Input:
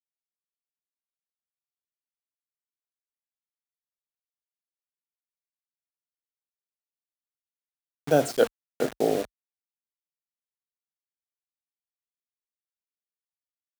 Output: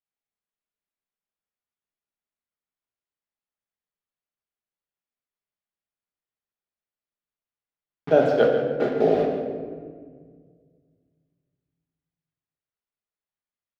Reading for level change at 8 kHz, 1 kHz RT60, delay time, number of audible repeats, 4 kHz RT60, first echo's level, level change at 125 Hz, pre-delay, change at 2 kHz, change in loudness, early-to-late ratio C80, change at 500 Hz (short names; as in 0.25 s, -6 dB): under -15 dB, 1.5 s, 0.146 s, 1, 1.0 s, -10.5 dB, +3.5 dB, 5 ms, +3.5 dB, +4.0 dB, 5.0 dB, +5.5 dB